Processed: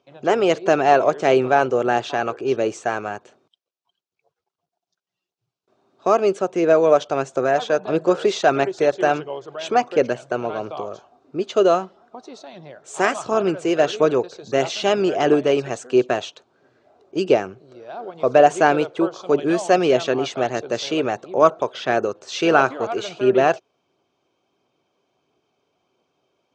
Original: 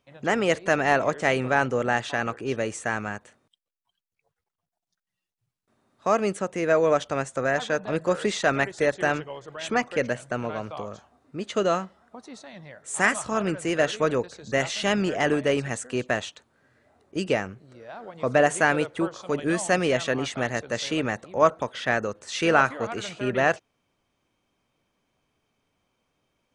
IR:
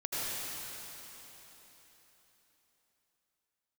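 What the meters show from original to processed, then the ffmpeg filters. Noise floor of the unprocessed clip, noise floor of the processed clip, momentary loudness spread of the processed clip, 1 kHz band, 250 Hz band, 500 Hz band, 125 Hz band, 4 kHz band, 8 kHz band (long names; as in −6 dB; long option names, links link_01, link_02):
below −85 dBFS, −84 dBFS, 12 LU, +6.5 dB, +5.0 dB, +7.0 dB, −0.5 dB, +3.0 dB, −1.0 dB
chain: -af "highpass=160,equalizer=frequency=210:width_type=q:width=4:gain=-5,equalizer=frequency=380:width_type=q:width=4:gain=9,equalizer=frequency=710:width_type=q:width=4:gain=5,equalizer=frequency=1900:width_type=q:width=4:gain=-10,lowpass=frequency=6400:width=0.5412,lowpass=frequency=6400:width=1.3066,aphaser=in_gain=1:out_gain=1:delay=2.1:decay=0.23:speed=1.5:type=triangular,volume=3.5dB"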